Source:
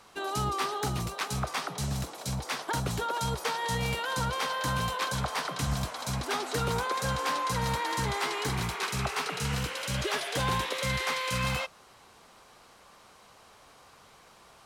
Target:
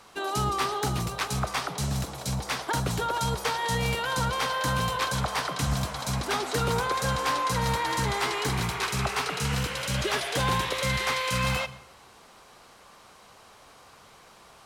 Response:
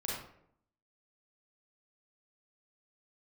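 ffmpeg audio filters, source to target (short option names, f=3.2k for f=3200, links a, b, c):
-filter_complex "[0:a]asplit=2[a][b];[1:a]atrim=start_sample=2205,adelay=75[c];[b][c]afir=irnorm=-1:irlink=0,volume=-20dB[d];[a][d]amix=inputs=2:normalize=0,volume=3dB"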